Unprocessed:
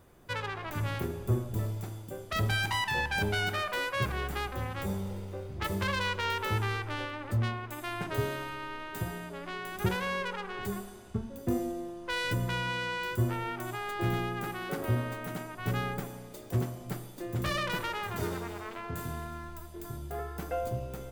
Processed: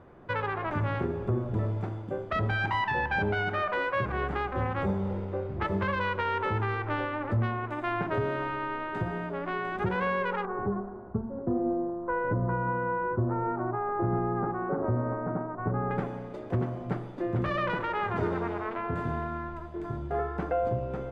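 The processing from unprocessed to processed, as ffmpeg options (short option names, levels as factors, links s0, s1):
-filter_complex "[0:a]asettb=1/sr,asplit=3[s0][s1][s2];[s0]atrim=end=10.454[s3];[s1]atrim=start=10.45:end=15.91,asetpts=PTS-STARTPTS,afade=t=in:d=0.004:c=qsin,afade=t=out:st=5.456:d=0.004:c=qsin,lowpass=f=1300:w=0.5412,lowpass=f=1300:w=1.3066[s4];[s2]atrim=start=15.906[s5];[s3][s4]acrossfade=d=0.004:c1=hsin:c2=qsin[s6];[s6][s5]acrossfade=d=0.004:c1=qsin:c2=hsin,lowpass=1600,lowshelf=f=95:g=-8.5,alimiter=level_in=1.5:limit=0.0631:level=0:latency=1:release=183,volume=0.668,volume=2.66"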